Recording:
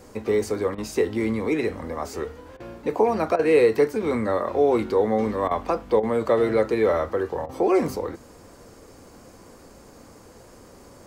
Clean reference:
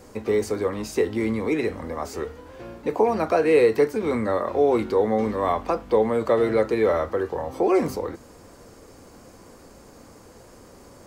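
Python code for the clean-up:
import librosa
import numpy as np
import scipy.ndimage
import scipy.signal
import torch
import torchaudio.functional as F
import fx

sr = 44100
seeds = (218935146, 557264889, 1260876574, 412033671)

y = fx.fix_interpolate(x, sr, at_s=(0.75, 2.57, 3.36, 5.48, 6.0, 7.46), length_ms=30.0)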